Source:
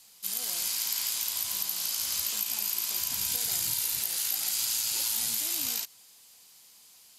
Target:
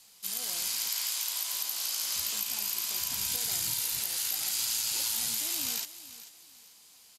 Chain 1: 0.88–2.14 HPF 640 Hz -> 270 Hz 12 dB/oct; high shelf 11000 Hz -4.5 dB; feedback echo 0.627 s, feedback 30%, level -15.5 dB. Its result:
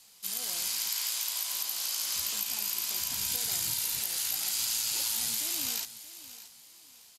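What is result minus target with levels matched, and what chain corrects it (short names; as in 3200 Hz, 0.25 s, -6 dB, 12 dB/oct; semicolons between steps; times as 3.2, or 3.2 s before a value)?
echo 0.186 s late
0.88–2.14 HPF 640 Hz -> 270 Hz 12 dB/oct; high shelf 11000 Hz -4.5 dB; feedback echo 0.441 s, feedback 30%, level -15.5 dB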